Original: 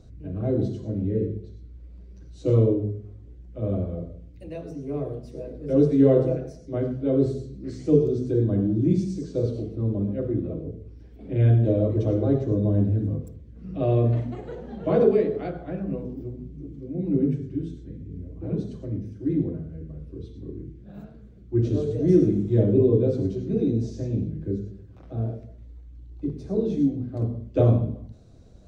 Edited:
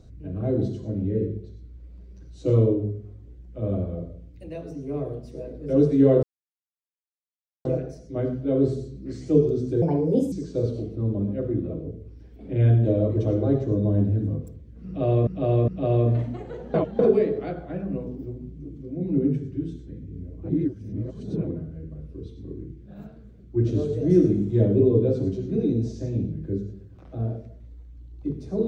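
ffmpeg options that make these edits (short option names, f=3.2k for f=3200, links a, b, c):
-filter_complex "[0:a]asplit=10[a][b][c][d][e][f][g][h][i][j];[a]atrim=end=6.23,asetpts=PTS-STARTPTS,afade=t=out:st=6.226:d=0.004:c=hsin,apad=pad_dur=1.42[k];[b]atrim=start=6.23:end=8.404,asetpts=PTS-STARTPTS,afade=t=in:d=0.004:c=hsin[l];[c]atrim=start=8.4:end=9.12,asetpts=PTS-STARTPTS,asetrate=63504,aresample=44100[m];[d]atrim=start=9.116:end=14.072[n];[e]atrim=start=13.658:end=14.072[o];[f]atrim=start=13.658:end=14.722[p];[g]atrim=start=14.718:end=14.972,asetpts=PTS-STARTPTS,areverse[q];[h]atrim=start=14.968:end=18.472[r];[i]atrim=start=18.468:end=19.452,asetpts=PTS-STARTPTS,areverse[s];[j]atrim=start=19.448[t];[k][l]concat=n=2:v=0:a=1[u];[u][m]acrossfade=d=0.004:c1=hsin:c2=hsin[v];[v][n]acrossfade=d=0.004:c1=hsin:c2=hsin[w];[w][o]acrossfade=d=0.004:c1=hsin:c2=hsin[x];[x][p]acrossfade=d=0.004:c1=hsin:c2=hsin[y];[y][q]acrossfade=d=0.004:c1=hsin:c2=hsin[z];[z][r]acrossfade=d=0.004:c1=hsin:c2=hsin[aa];[aa][s]acrossfade=d=0.004:c1=hsin:c2=hsin[ab];[ab][t]acrossfade=d=0.004:c1=hsin:c2=hsin"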